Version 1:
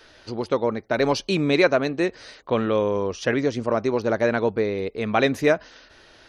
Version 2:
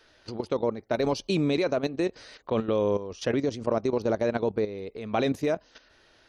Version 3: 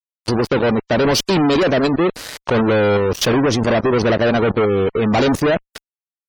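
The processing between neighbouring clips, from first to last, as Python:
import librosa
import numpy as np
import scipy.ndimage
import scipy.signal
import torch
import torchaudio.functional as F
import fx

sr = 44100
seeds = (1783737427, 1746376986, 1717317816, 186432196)

y1 = fx.dynamic_eq(x, sr, hz=1700.0, q=1.1, threshold_db=-39.0, ratio=4.0, max_db=-8)
y1 = fx.level_steps(y1, sr, step_db=12)
y2 = fx.fuzz(y1, sr, gain_db=39.0, gate_db=-46.0)
y2 = fx.spec_gate(y2, sr, threshold_db=-30, keep='strong')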